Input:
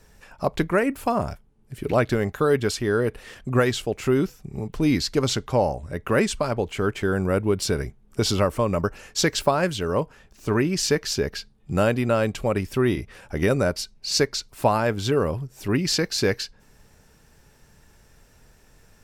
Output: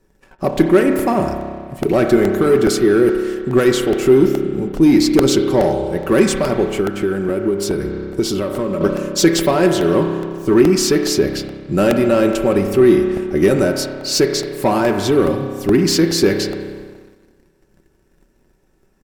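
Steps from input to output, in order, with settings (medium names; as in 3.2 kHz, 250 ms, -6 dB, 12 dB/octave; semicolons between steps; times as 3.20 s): treble shelf 7.7 kHz +8 dB; reverberation RT60 2.2 s, pre-delay 30 ms, DRR 5.5 dB; waveshaping leveller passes 2; comb 5.3 ms, depth 42%; 6.80–8.81 s: compression, threshold -17 dBFS, peak gain reduction 7.5 dB; peaking EQ 320 Hz +12.5 dB 0.67 oct; crackling interface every 0.42 s, samples 64, repeat, from 0.99 s; tape noise reduction on one side only decoder only; trim -4 dB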